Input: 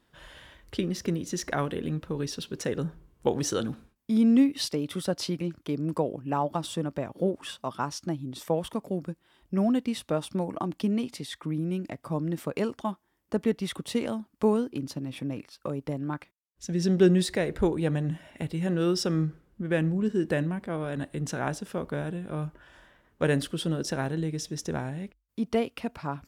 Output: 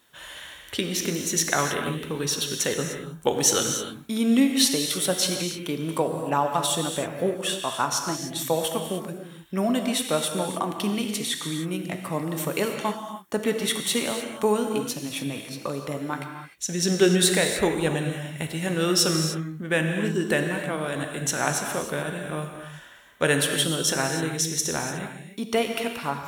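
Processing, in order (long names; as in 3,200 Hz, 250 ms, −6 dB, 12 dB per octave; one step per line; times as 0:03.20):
spectral tilt +3 dB per octave
notch filter 4,900 Hz, Q 5.2
reverb whose tail is shaped and stops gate 330 ms flat, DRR 3.5 dB
level +5.5 dB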